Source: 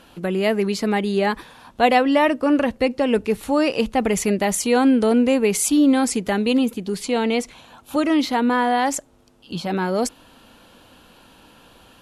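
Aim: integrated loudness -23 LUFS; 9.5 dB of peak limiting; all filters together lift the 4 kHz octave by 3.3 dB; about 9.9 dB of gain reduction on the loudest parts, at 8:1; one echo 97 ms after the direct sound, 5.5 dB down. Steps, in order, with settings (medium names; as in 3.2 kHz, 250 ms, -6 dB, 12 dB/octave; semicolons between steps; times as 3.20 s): peaking EQ 4 kHz +4.5 dB; compression 8:1, threshold -22 dBFS; peak limiter -21.5 dBFS; delay 97 ms -5.5 dB; trim +6.5 dB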